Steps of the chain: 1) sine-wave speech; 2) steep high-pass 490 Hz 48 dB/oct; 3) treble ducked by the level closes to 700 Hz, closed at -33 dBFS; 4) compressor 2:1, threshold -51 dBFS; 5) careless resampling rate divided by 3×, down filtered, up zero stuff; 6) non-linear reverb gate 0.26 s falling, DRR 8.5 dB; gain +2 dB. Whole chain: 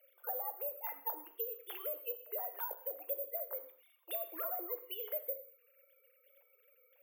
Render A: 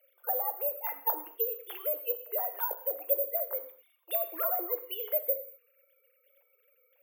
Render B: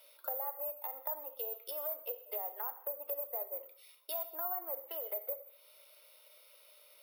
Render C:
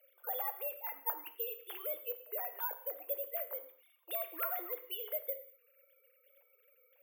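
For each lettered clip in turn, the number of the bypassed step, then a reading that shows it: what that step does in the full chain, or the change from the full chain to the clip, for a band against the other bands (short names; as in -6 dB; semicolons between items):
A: 4, mean gain reduction 7.0 dB; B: 1, 8 kHz band +6.0 dB; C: 3, 250 Hz band -4.0 dB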